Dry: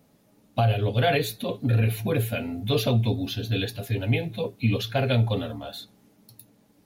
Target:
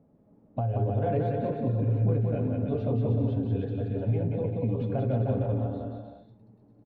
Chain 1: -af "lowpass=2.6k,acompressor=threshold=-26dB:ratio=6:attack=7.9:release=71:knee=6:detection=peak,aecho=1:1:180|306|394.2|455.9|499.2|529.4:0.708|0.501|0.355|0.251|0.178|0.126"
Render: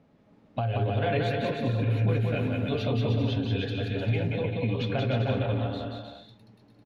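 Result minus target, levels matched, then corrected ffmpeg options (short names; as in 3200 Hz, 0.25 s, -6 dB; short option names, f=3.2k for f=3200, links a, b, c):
2000 Hz band +15.0 dB
-af "lowpass=690,acompressor=threshold=-26dB:ratio=6:attack=7.9:release=71:knee=6:detection=peak,aecho=1:1:180|306|394.2|455.9|499.2|529.4:0.708|0.501|0.355|0.251|0.178|0.126"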